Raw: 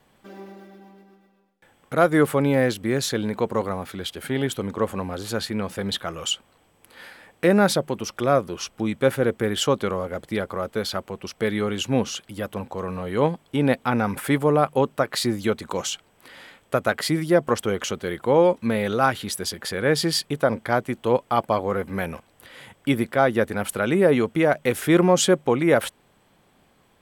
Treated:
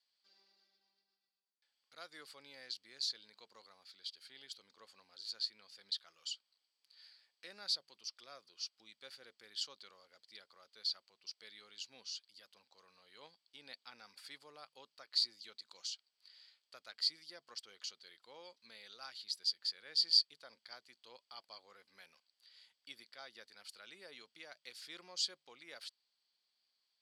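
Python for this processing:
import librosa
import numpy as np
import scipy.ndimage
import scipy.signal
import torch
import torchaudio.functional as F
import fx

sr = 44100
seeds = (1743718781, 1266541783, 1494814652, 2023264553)

y = fx.bandpass_q(x, sr, hz=4600.0, q=11.0)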